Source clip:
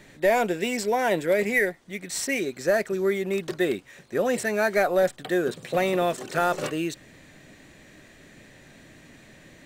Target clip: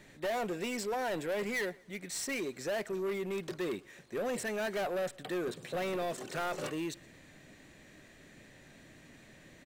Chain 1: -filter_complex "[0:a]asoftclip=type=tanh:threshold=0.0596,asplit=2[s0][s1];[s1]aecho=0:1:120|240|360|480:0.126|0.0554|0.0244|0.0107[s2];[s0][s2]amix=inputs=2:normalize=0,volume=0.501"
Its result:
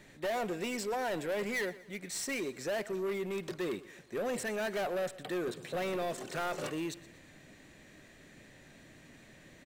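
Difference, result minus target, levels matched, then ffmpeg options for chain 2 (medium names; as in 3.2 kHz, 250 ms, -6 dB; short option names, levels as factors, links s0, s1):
echo-to-direct +7 dB
-filter_complex "[0:a]asoftclip=type=tanh:threshold=0.0596,asplit=2[s0][s1];[s1]aecho=0:1:120|240|360:0.0562|0.0247|0.0109[s2];[s0][s2]amix=inputs=2:normalize=0,volume=0.501"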